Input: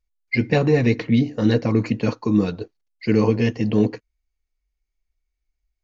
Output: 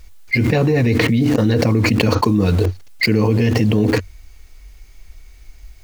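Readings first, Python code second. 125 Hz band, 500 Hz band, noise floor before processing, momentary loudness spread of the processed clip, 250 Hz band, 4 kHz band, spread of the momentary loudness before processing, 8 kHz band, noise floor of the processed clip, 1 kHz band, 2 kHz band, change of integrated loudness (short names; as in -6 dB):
+6.5 dB, +3.0 dB, -79 dBFS, 4 LU, +3.0 dB, +10.0 dB, 8 LU, n/a, -43 dBFS, +7.5 dB, +7.5 dB, +4.0 dB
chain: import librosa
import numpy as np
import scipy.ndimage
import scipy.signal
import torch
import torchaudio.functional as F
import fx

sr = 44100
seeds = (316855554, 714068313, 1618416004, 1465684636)

p1 = fx.peak_eq(x, sr, hz=92.0, db=10.5, octaves=0.37)
p2 = fx.quant_dither(p1, sr, seeds[0], bits=6, dither='none')
p3 = p1 + (p2 * 10.0 ** (-9.0 / 20.0))
p4 = fx.env_flatten(p3, sr, amount_pct=100)
y = p4 * 10.0 ** (-4.5 / 20.0)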